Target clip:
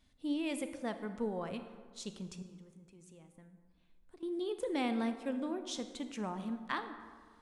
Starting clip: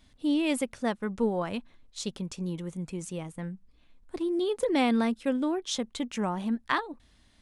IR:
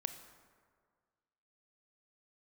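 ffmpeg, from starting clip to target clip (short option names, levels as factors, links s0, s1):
-filter_complex "[0:a]asettb=1/sr,asplit=3[s0][s1][s2];[s0]atrim=end=2.424[s3];[s1]atrim=start=2.42:end=4.23,asetpts=PTS-STARTPTS,afade=t=in:d=0.004:c=qsin,afade=t=out:st=1.806:d=0.004:c=qsin,acompressor=threshold=0.00501:ratio=6[s4];[s2]atrim=start=4.226[s5];[s3][s4]acrossfade=d=0.004:c1=hsin:c2=qsin[s6];[s6][s5]acrossfade=d=0.004:c1=qsin:c2=hsin[s7];[1:a]atrim=start_sample=2205[s8];[s7][s8]afir=irnorm=-1:irlink=0,volume=0.398"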